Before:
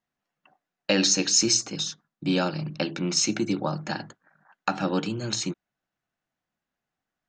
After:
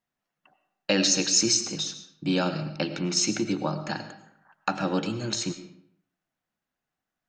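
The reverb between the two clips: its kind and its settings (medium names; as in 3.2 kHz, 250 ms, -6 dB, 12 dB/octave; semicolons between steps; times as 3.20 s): algorithmic reverb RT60 0.69 s, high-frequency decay 0.75×, pre-delay 65 ms, DRR 10.5 dB; trim -1 dB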